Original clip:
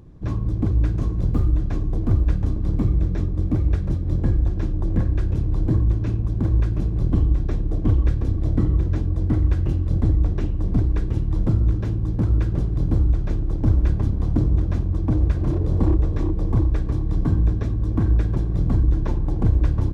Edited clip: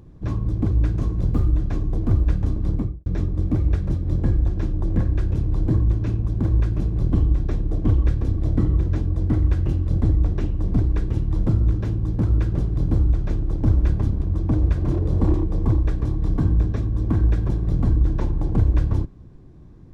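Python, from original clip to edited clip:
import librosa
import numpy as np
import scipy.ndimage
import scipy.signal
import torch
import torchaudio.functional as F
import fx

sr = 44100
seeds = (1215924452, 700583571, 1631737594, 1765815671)

y = fx.studio_fade_out(x, sr, start_s=2.67, length_s=0.39)
y = fx.edit(y, sr, fx.cut(start_s=14.22, length_s=0.59),
    fx.cut(start_s=15.93, length_s=0.28), tone=tone)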